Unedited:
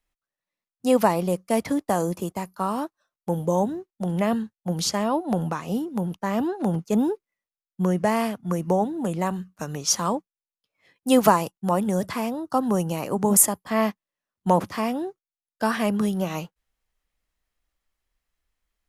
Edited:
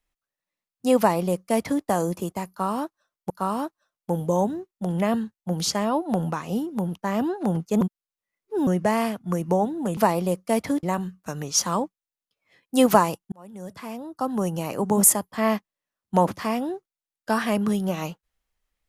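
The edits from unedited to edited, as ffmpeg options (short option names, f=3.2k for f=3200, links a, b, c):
-filter_complex "[0:a]asplit=7[a][b][c][d][e][f][g];[a]atrim=end=3.302[h];[b]atrim=start=2.488:end=7.002[i];[c]atrim=start=6.998:end=7.862,asetpts=PTS-STARTPTS,areverse[j];[d]atrim=start=7.858:end=9.162[k];[e]atrim=start=0.978:end=1.842[l];[f]atrim=start=9.158:end=11.65,asetpts=PTS-STARTPTS,afade=t=out:st=2.488:d=0.004:c=hsin[m];[g]atrim=start=11.65,asetpts=PTS-STARTPTS,afade=t=in:d=1.45[n];[h][i]acrossfade=d=0.004:c1=hsin:c2=hsin[o];[o][j]acrossfade=d=0.004:c1=hsin:c2=hsin[p];[p][k]acrossfade=d=0.004:c1=hsin:c2=hsin[q];[q][l]acrossfade=d=0.004:c1=hsin:c2=hsin[r];[m][n]concat=n=2:v=0:a=1[s];[r][s]acrossfade=d=0.004:c1=hsin:c2=hsin"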